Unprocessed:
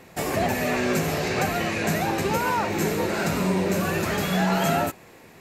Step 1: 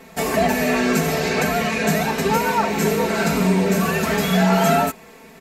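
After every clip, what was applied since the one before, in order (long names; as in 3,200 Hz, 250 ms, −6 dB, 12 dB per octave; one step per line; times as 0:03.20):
comb filter 4.5 ms, depth 95%
level +2 dB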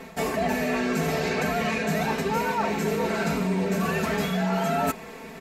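high-shelf EQ 5,700 Hz −6.5 dB
reversed playback
downward compressor 6 to 1, threshold −27 dBFS, peak gain reduction 13.5 dB
reversed playback
level +4 dB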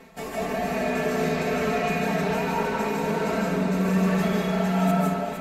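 delay that swaps between a low-pass and a high-pass 230 ms, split 890 Hz, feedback 66%, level −3.5 dB
convolution reverb RT60 1.3 s, pre-delay 115 ms, DRR −4.5 dB
level −7.5 dB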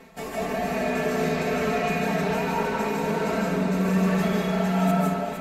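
no processing that can be heard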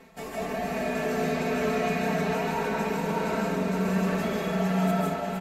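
single-tap delay 589 ms −6 dB
level −3.5 dB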